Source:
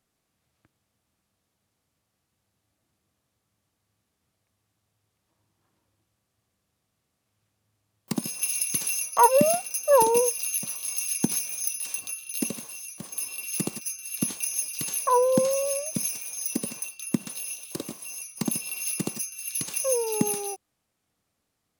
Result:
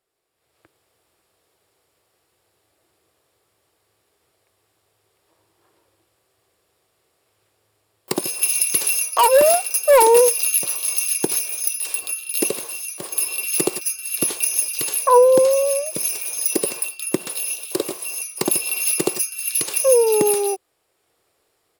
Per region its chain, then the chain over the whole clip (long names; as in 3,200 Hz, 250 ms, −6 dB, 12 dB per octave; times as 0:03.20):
0:08.99–0:10.31: high-pass filter 55 Hz + low-shelf EQ 440 Hz −8.5 dB + hard clipping −21 dBFS
whole clip: low shelf with overshoot 300 Hz −8 dB, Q 3; notch filter 6,200 Hz, Q 6.4; automatic gain control gain up to 12 dB; level −1 dB